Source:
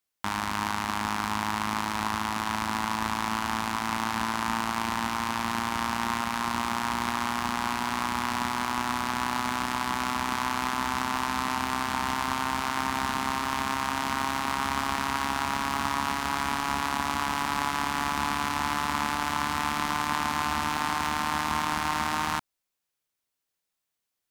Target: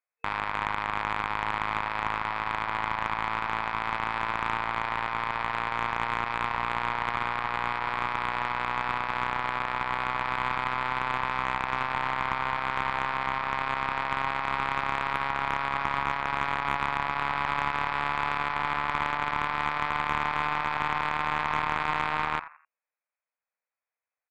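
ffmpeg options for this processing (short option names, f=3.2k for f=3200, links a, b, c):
-filter_complex "[0:a]afftfilt=real='re*between(b*sr/4096,460,2600)':imag='im*between(b*sr/4096,460,2600)':win_size=4096:overlap=0.75,asplit=4[a][b][c][d];[b]adelay=85,afreqshift=65,volume=-11dB[e];[c]adelay=170,afreqshift=130,volume=-21.2dB[f];[d]adelay=255,afreqshift=195,volume=-31.3dB[g];[a][e][f][g]amix=inputs=4:normalize=0,aeval=exprs='0.224*(cos(1*acos(clip(val(0)/0.224,-1,1)))-cos(1*PI/2))+0.0891*(cos(2*acos(clip(val(0)/0.224,-1,1)))-cos(2*PI/2))+0.00631*(cos(6*acos(clip(val(0)/0.224,-1,1)))-cos(6*PI/2))+0.00708*(cos(7*acos(clip(val(0)/0.224,-1,1)))-cos(7*PI/2))+0.00501*(cos(8*acos(clip(val(0)/0.224,-1,1)))-cos(8*PI/2))':c=same"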